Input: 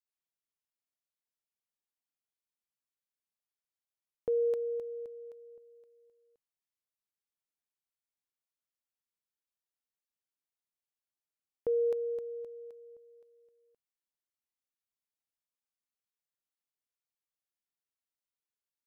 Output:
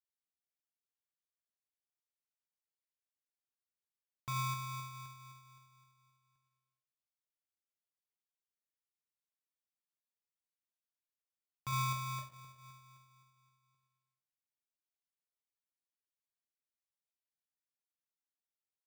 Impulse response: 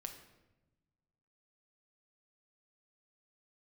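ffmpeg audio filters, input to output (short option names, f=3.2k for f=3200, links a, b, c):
-filter_complex "[0:a]asettb=1/sr,asplit=3[a][b][c];[a]atrim=end=11.724[d];[b]atrim=start=11.72:end=12.22,asetpts=PTS-STARTPTS,afade=t=in:d=0.004:c=qsin,afade=t=out:st=0.496:d=0.004:c=qsin,aemphasis=mode=reproduction:type=bsi[e];[c]atrim=start=12.216[f];[d][e]acrossfade=d=0.004:c1=hsin:c2=qsin[g];[g][f]acrossfade=d=0.004:c1=qsin:c2=hsin[h];[1:a]atrim=start_sample=2205,asetrate=42336,aresample=44100[i];[h][i]afir=irnorm=-1:irlink=0,aeval=exprs='val(0)*sgn(sin(2*PI*600*n/s))':c=same,volume=-6.5dB"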